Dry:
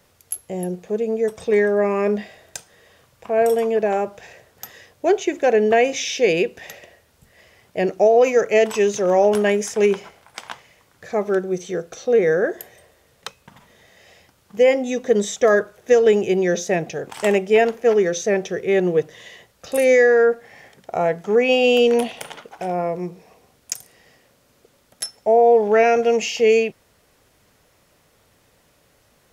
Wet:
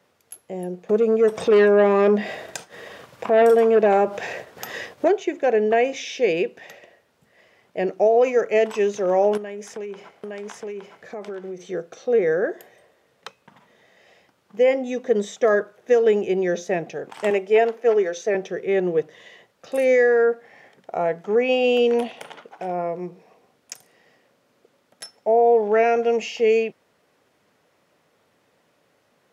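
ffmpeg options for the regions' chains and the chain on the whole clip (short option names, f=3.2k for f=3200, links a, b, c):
-filter_complex "[0:a]asettb=1/sr,asplit=3[a][b][c];[a]atrim=end=0.894[d];[b]atrim=start=0.89:end=5.08,asetpts=PTS-STARTPTS,afade=t=in:d=0.004:c=qsin,afade=t=out:st=4.186:d=0.004:c=qsin,agate=range=-33dB:threshold=-44dB:ratio=3:release=100:detection=peak,acompressor=mode=upward:threshold=-23dB:ratio=2.5:attack=3.2:release=140:knee=2.83:detection=peak,aeval=exprs='0.398*sin(PI/2*1.58*val(0)/0.398)':c=same[e];[c]atrim=start=5.076[f];[d][e]acrossfade=d=0.004:c1=hsin:c2=qsin[g];[g][f]acrossfade=d=0.004:c1=qsin:c2=hsin,asettb=1/sr,asplit=3[h][i][j];[h]atrim=end=9.374[k];[i]atrim=start=9.37:end=11.64,asetpts=PTS-STARTPTS,afade=t=in:d=0.004:c=qsin,afade=t=out:st=2.266:d=0.004:c=qsin,aecho=1:1:865:0.708,atrim=end_sample=100107,acompressor=threshold=-26dB:ratio=12:attack=3.2:release=140:knee=1:detection=peak[l];[j]atrim=start=11.636[m];[k][l]acrossfade=d=0.004:c1=hsin:c2=qsin[n];[n][m]acrossfade=d=0.004:c1=qsin:c2=hsin,asettb=1/sr,asplit=3[o][p][q];[o]atrim=end=17.304[r];[p]atrim=start=17.3:end=18.35,asetpts=PTS-STARTPTS,afade=t=in:d=0.004:c=qsin,afade=t=out:st=1.046:d=0.004:c=qsin,highpass=310,aecho=1:1:4.6:0.3,atrim=end_sample=46305[s];[q]atrim=start=18.346[t];[r][s]acrossfade=d=0.004:c1=hsin:c2=qsin[u];[u][t]acrossfade=d=0.004:c1=qsin:c2=hsin,highpass=180,highshelf=f=4.9k:g=-12,volume=-2.5dB"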